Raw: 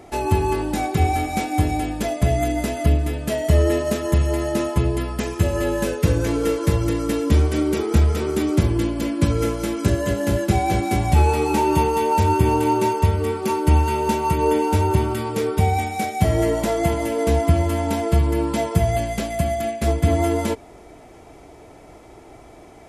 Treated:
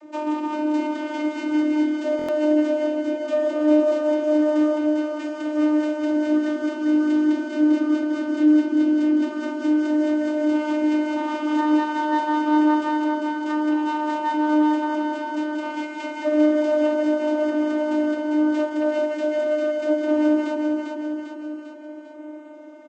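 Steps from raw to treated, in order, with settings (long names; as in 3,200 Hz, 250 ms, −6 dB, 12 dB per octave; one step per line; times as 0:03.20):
phase distortion by the signal itself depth 0.45 ms
in parallel at +0.5 dB: brickwall limiter −14 dBFS, peak gain reduction 9.5 dB
on the sum: channel vocoder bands 32, saw 303 Hz
repeating echo 398 ms, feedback 57%, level −4 dB
buffer that repeats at 0:02.17, samples 1,024, times 4
level −3 dB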